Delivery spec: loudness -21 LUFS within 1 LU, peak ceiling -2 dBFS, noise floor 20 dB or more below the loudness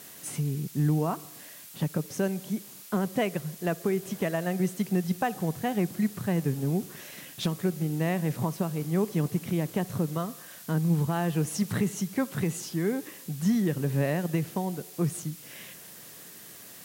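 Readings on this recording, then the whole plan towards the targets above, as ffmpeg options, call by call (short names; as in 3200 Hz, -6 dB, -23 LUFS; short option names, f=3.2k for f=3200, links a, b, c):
noise floor -47 dBFS; noise floor target -50 dBFS; loudness -29.5 LUFS; peak -16.0 dBFS; loudness target -21.0 LUFS
-> -af "afftdn=nr=6:nf=-47"
-af "volume=8.5dB"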